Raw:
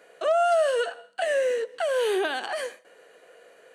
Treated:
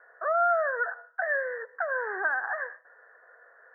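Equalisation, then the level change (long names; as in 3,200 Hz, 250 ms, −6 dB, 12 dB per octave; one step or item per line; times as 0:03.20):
high-pass filter 1,400 Hz 12 dB per octave
Butterworth low-pass 1,800 Hz 96 dB per octave
+7.5 dB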